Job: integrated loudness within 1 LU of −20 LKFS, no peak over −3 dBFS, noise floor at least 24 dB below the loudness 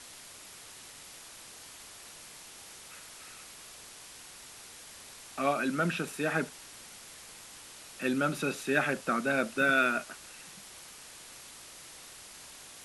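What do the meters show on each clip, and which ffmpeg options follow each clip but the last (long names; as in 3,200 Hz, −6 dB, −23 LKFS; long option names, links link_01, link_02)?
background noise floor −50 dBFS; target noise floor −54 dBFS; integrated loudness −30.0 LKFS; sample peak −13.5 dBFS; target loudness −20.0 LKFS
→ -af "afftdn=noise_reduction=6:noise_floor=-50"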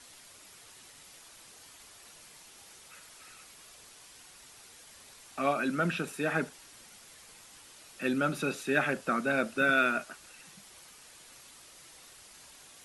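background noise floor −54 dBFS; integrated loudness −30.0 LKFS; sample peak −13.5 dBFS; target loudness −20.0 LKFS
→ -af "volume=10dB"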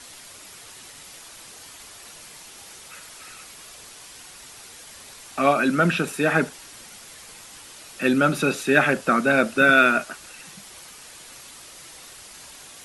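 integrated loudness −20.0 LKFS; sample peak −3.5 dBFS; background noise floor −44 dBFS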